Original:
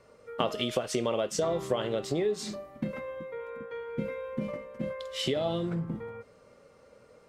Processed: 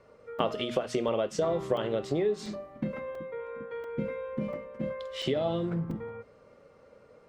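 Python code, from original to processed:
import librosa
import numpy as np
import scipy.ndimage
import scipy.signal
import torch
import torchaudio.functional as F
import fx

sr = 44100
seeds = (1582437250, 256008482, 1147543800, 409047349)

y = fx.lowpass(x, sr, hz=2500.0, slope=6)
y = fx.hum_notches(y, sr, base_hz=60, count=4)
y = fx.buffer_crackle(y, sr, first_s=0.39, period_s=0.69, block=128, kind='zero')
y = y * 10.0 ** (1.0 / 20.0)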